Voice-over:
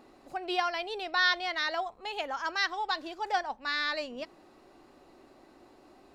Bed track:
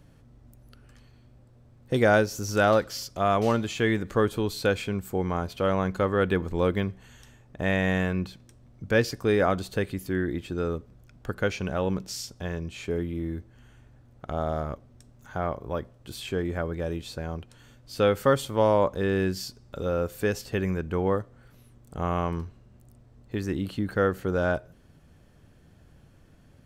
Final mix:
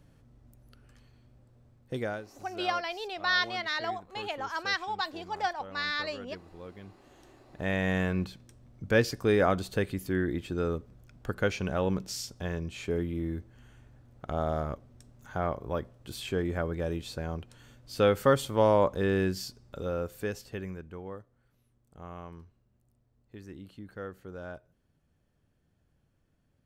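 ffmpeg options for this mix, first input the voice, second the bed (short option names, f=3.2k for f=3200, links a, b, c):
-filter_complex "[0:a]adelay=2100,volume=-1dB[a];[1:a]volume=15.5dB,afade=t=out:st=1.66:d=0.55:silence=0.141254,afade=t=in:st=6.8:d=1.42:silence=0.1,afade=t=out:st=19.09:d=1.94:silence=0.177828[b];[a][b]amix=inputs=2:normalize=0"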